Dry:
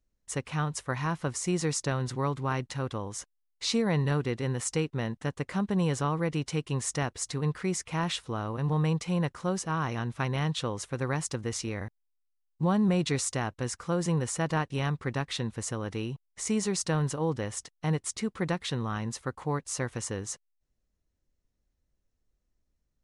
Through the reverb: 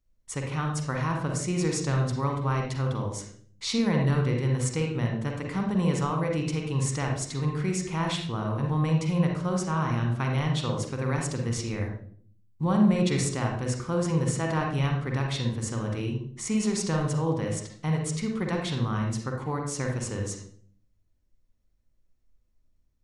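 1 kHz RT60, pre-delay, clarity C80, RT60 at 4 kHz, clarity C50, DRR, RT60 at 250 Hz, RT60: 0.45 s, 39 ms, 7.5 dB, 0.40 s, 2.5 dB, 1.0 dB, 0.80 s, 0.50 s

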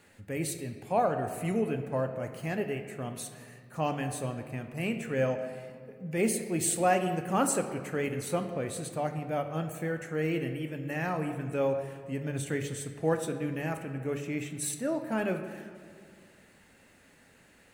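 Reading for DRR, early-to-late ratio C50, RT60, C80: 6.0 dB, 8.5 dB, 2.0 s, 9.5 dB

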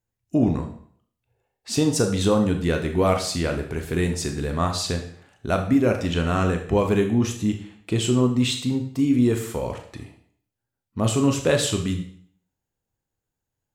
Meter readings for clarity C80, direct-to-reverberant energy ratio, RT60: 12.0 dB, 4.0 dB, 0.55 s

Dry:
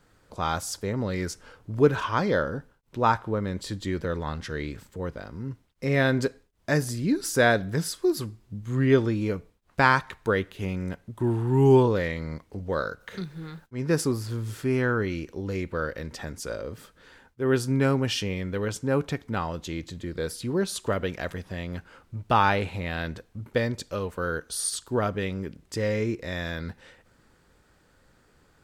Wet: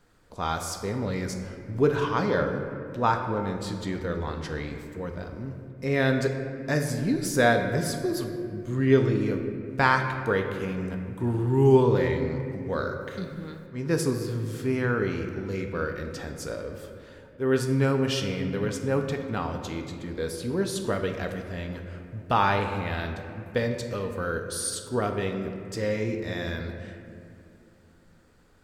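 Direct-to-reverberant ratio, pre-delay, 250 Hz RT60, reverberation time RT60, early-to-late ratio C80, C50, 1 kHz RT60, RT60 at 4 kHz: 4.5 dB, 4 ms, 3.7 s, 2.6 s, 7.5 dB, 6.5 dB, 2.2 s, 1.4 s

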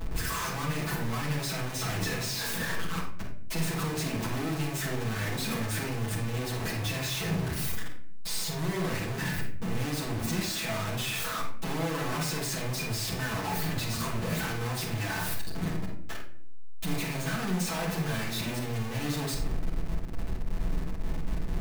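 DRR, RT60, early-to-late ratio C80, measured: -7.0 dB, not exponential, 8.5 dB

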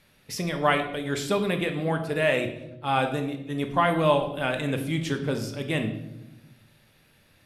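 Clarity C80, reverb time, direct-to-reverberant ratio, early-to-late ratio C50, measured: 11.5 dB, 0.95 s, 5.0 dB, 9.5 dB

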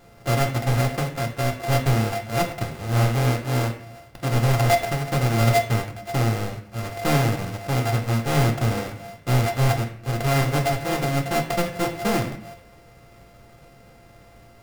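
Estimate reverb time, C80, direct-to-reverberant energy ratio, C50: 0.55 s, 12.5 dB, 3.0 dB, 9.5 dB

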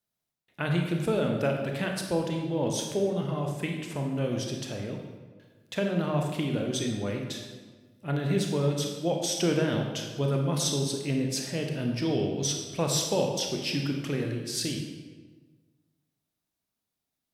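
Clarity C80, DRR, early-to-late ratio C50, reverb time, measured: 5.5 dB, 1.5 dB, 4.0 dB, 1.4 s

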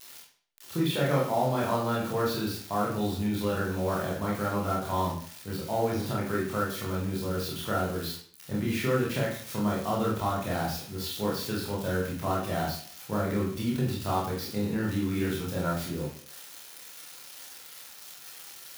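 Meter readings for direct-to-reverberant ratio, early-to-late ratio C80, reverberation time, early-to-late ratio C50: -5.0 dB, 8.0 dB, 0.50 s, 4.5 dB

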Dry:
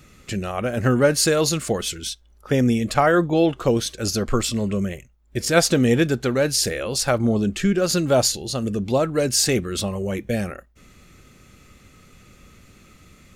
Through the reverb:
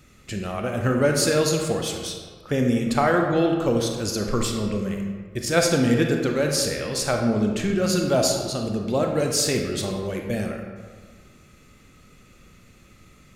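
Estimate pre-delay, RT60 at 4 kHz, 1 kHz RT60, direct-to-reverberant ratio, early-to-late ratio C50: 27 ms, 1.0 s, 1.6 s, 2.0 dB, 3.5 dB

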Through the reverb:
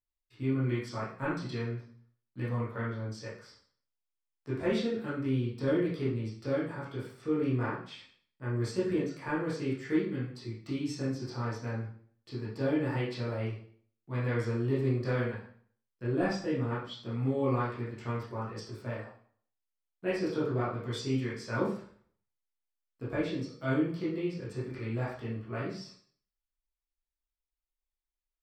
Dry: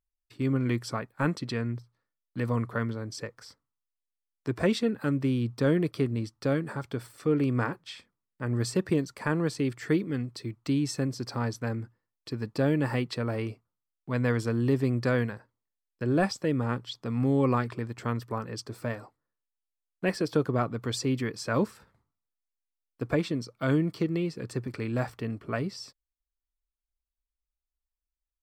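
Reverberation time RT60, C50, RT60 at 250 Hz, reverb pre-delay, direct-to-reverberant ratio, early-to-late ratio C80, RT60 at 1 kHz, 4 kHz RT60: 0.50 s, 2.5 dB, 0.50 s, 7 ms, -9.5 dB, 8.0 dB, 0.50 s, 0.50 s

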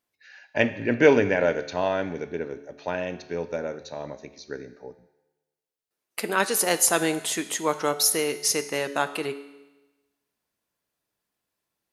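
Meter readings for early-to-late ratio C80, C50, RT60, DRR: 15.5 dB, 13.5 dB, 1.1 s, 10.5 dB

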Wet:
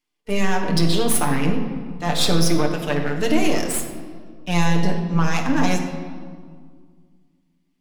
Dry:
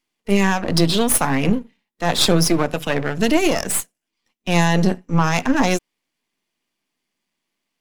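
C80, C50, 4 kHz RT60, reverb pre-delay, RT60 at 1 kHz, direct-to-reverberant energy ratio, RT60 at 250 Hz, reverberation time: 7.5 dB, 6.0 dB, 1.2 s, 7 ms, 1.8 s, 1.0 dB, 2.5 s, 1.9 s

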